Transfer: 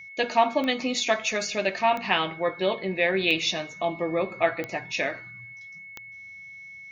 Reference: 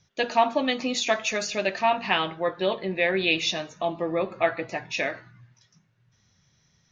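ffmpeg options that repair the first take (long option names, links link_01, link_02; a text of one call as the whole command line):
ffmpeg -i in.wav -af "adeclick=threshold=4,bandreject=frequency=2200:width=30" out.wav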